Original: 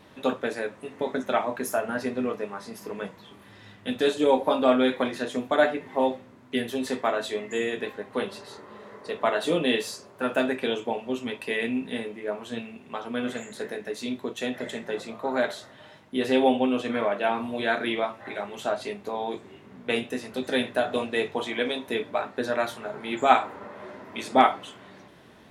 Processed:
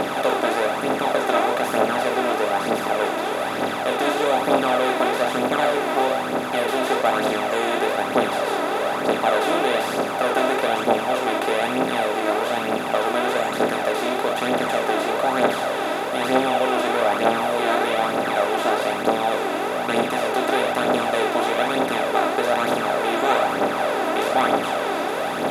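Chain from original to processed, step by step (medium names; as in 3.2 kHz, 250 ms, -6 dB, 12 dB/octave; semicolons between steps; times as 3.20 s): spectral levelling over time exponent 0.2; phaser 1.1 Hz, delay 3.2 ms, feedback 50%; trim -7.5 dB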